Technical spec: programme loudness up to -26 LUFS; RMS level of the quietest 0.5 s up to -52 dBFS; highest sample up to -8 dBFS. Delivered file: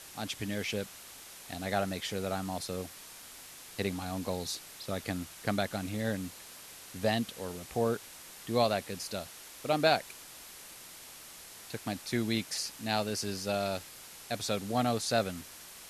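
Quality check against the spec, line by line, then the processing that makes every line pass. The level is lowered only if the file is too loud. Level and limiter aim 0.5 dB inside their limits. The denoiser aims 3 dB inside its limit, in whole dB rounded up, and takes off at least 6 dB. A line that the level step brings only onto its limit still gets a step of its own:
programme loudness -34.0 LUFS: pass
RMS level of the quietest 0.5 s -50 dBFS: fail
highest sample -13.5 dBFS: pass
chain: noise reduction 6 dB, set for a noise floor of -50 dBFS

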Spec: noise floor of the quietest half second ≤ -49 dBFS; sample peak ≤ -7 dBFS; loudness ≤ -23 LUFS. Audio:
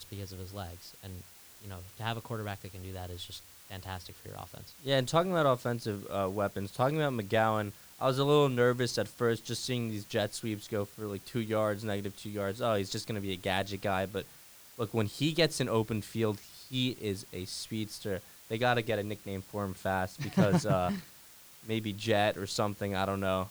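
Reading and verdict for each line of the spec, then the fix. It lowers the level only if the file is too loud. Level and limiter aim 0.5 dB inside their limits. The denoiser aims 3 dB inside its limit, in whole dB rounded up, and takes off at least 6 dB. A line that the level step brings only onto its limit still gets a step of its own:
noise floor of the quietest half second -55 dBFS: pass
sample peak -12.5 dBFS: pass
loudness -32.5 LUFS: pass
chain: none needed

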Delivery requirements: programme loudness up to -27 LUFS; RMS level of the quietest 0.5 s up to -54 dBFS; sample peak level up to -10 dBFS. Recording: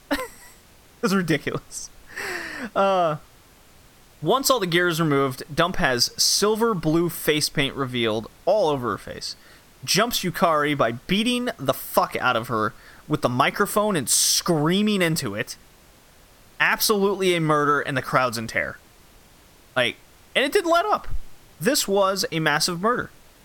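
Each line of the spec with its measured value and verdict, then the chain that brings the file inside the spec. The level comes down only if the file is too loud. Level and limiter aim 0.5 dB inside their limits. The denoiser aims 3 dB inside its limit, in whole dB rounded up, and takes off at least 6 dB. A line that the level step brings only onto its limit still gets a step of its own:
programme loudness -22.0 LUFS: fail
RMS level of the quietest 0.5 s -52 dBFS: fail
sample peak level -3.0 dBFS: fail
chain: trim -5.5 dB; peak limiter -10.5 dBFS

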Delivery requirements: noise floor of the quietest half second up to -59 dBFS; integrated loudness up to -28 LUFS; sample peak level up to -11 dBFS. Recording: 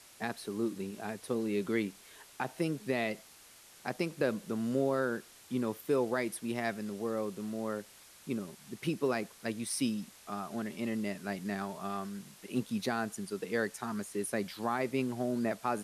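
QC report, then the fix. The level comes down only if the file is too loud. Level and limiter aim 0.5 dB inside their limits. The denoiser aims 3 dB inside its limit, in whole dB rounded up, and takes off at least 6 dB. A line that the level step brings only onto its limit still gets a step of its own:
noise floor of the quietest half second -57 dBFS: fail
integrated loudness -35.5 LUFS: pass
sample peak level -19.5 dBFS: pass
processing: noise reduction 6 dB, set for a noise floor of -57 dBFS

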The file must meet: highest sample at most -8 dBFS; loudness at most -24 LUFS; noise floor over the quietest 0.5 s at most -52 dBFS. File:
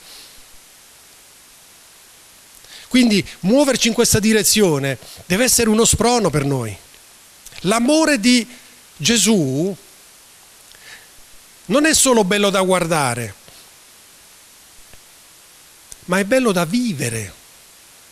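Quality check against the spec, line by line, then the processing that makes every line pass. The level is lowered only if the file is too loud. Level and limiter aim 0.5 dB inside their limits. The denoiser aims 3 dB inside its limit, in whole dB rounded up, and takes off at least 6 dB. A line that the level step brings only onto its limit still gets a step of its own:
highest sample -3.5 dBFS: fail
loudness -16.0 LUFS: fail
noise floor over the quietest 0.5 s -46 dBFS: fail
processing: trim -8.5 dB

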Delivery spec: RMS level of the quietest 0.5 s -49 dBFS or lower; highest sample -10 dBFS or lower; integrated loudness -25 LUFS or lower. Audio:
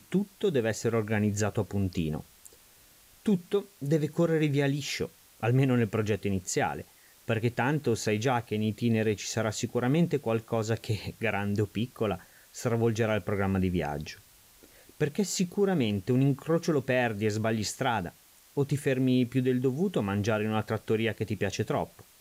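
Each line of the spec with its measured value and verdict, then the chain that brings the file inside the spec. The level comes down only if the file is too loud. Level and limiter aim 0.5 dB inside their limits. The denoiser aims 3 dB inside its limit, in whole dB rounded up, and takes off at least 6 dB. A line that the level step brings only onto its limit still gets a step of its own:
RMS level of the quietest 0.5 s -58 dBFS: pass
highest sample -13.5 dBFS: pass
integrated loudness -29.0 LUFS: pass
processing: none needed

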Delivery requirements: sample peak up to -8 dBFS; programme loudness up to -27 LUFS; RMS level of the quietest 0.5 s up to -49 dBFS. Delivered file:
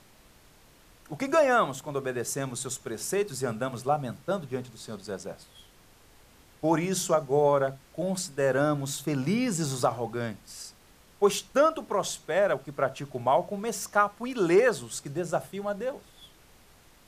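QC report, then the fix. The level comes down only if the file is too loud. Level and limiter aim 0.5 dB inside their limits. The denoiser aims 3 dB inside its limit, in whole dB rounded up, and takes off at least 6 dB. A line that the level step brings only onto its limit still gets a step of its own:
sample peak -9.0 dBFS: pass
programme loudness -28.0 LUFS: pass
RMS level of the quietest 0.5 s -57 dBFS: pass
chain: none needed

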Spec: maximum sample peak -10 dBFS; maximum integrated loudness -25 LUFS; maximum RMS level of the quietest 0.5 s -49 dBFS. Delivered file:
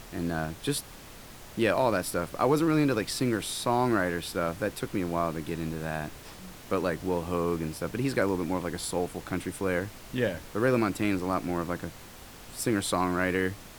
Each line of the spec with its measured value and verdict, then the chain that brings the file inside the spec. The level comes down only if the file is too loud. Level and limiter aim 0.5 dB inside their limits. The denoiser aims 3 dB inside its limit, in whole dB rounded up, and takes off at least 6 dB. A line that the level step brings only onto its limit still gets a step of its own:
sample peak -11.0 dBFS: pass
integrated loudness -29.5 LUFS: pass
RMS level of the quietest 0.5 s -47 dBFS: fail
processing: noise reduction 6 dB, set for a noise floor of -47 dBFS

